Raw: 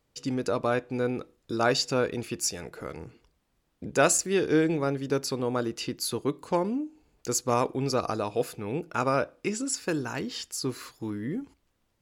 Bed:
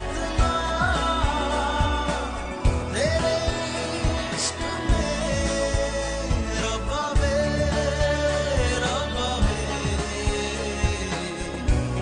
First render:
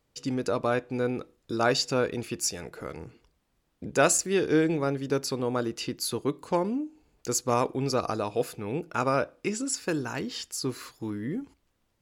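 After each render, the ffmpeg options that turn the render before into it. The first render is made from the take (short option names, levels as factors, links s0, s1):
-af anull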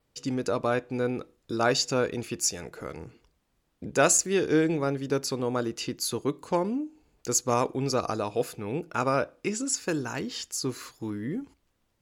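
-af "adynamicequalizer=threshold=0.00355:dfrequency=6600:dqfactor=4.8:tfrequency=6600:tqfactor=4.8:attack=5:release=100:ratio=0.375:range=3:mode=boostabove:tftype=bell"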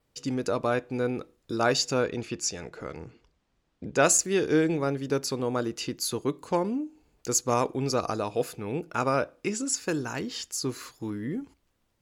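-filter_complex "[0:a]asettb=1/sr,asplit=3[s0][s1][s2];[s0]atrim=end=2.034[s3];[s1]atrim=start=2.03:end=4.05,asetpts=PTS-STARTPTS,afade=t=in:d=0.004:c=qsin,afade=t=out:st=2.016:d=0.004:c=qsin,lowpass=6500[s4];[s2]atrim=start=4.046[s5];[s3][s4]acrossfade=d=0.004:c1=hsin:c2=qsin[s6];[s6][s5]acrossfade=d=0.004:c1=qsin:c2=hsin"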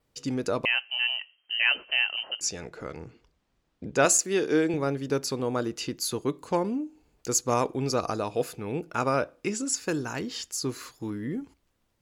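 -filter_complex "[0:a]asettb=1/sr,asplit=3[s0][s1][s2];[s0]atrim=end=0.654[s3];[s1]atrim=start=0.65:end=2.41,asetpts=PTS-STARTPTS,afade=t=in:d=0.004:c=qsin,afade=t=out:st=1.756:d=0.004:c=qsin,lowpass=f=2700:t=q:w=0.5098,lowpass=f=2700:t=q:w=0.6013,lowpass=f=2700:t=q:w=0.9,lowpass=f=2700:t=q:w=2.563,afreqshift=-3200[s4];[s2]atrim=start=2.406[s5];[s3][s4]acrossfade=d=0.004:c1=hsin:c2=qsin[s6];[s6][s5]acrossfade=d=0.004:c1=qsin:c2=hsin,asettb=1/sr,asplit=3[s7][s8][s9];[s7]atrim=end=4.054[s10];[s8]atrim=start=4.05:end=4.74,asetpts=PTS-STARTPTS,afade=t=in:d=0.004:c=qsin,afade=t=out:st=0.686:d=0.004:c=qsin,highpass=200[s11];[s9]atrim=start=4.736[s12];[s10][s11]acrossfade=d=0.004:c1=hsin:c2=qsin[s13];[s13][s12]acrossfade=d=0.004:c1=qsin:c2=hsin"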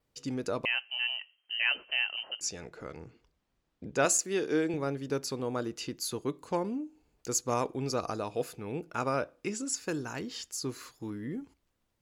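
-af "volume=0.562"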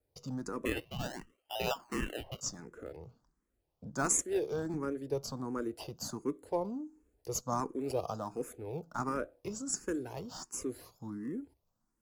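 -filter_complex "[0:a]acrossover=split=220|1700|4700[s0][s1][s2][s3];[s2]acrusher=samples=40:mix=1:aa=0.000001:lfo=1:lforange=40:lforate=0.46[s4];[s0][s1][s4][s3]amix=inputs=4:normalize=0,asplit=2[s5][s6];[s6]afreqshift=1.4[s7];[s5][s7]amix=inputs=2:normalize=1"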